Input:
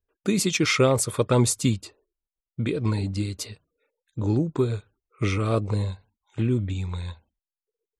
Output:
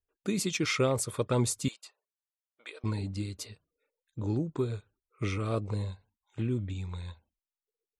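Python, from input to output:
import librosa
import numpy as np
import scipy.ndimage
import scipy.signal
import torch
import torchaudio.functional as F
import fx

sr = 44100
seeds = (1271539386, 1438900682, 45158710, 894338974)

y = fx.highpass(x, sr, hz=660.0, slope=24, at=(1.68, 2.84))
y = y * librosa.db_to_amplitude(-7.5)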